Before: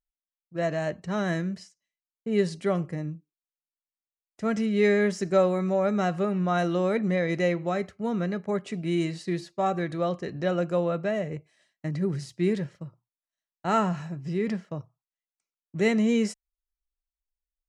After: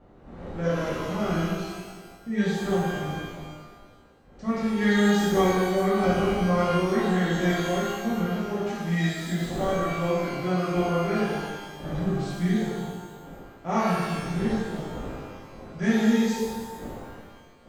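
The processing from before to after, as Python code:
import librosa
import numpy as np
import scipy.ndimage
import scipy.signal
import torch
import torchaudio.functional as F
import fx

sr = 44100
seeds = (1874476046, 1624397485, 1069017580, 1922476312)

y = fx.dmg_wind(x, sr, seeds[0], corner_hz=470.0, level_db=-42.0)
y = fx.formant_shift(y, sr, semitones=-3)
y = fx.rev_shimmer(y, sr, seeds[1], rt60_s=1.3, semitones=12, shimmer_db=-8, drr_db=-8.5)
y = y * librosa.db_to_amplitude(-8.0)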